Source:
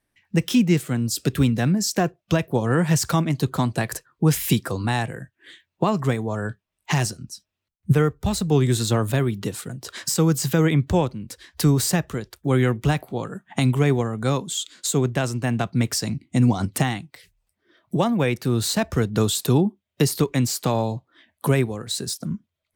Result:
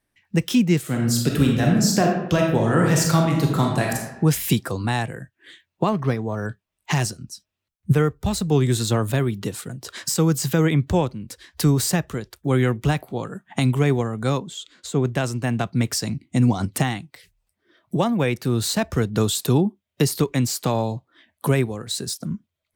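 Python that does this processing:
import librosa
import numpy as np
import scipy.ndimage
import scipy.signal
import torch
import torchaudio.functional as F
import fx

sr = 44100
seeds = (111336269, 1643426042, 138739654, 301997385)

y = fx.reverb_throw(x, sr, start_s=0.8, length_s=3.29, rt60_s=0.92, drr_db=-0.5)
y = fx.resample_linear(y, sr, factor=6, at=(5.89, 6.46))
y = fx.lowpass(y, sr, hz=2000.0, slope=6, at=(14.39, 15.05))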